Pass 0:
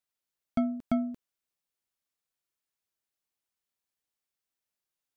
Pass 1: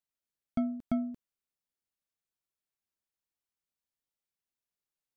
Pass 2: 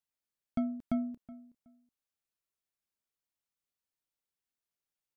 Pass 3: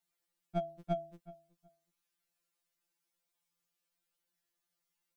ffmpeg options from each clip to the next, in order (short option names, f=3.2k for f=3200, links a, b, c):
-af "lowshelf=f=340:g=6,volume=-6.5dB"
-filter_complex "[0:a]asplit=2[a][b];[b]adelay=372,lowpass=f=1.9k:p=1,volume=-18dB,asplit=2[c][d];[d]adelay=372,lowpass=f=1.9k:p=1,volume=0.22[e];[a][c][e]amix=inputs=3:normalize=0,volume=-1.5dB"
-af "afftfilt=real='re*2.83*eq(mod(b,8),0)':imag='im*2.83*eq(mod(b,8),0)':win_size=2048:overlap=0.75,volume=8dB"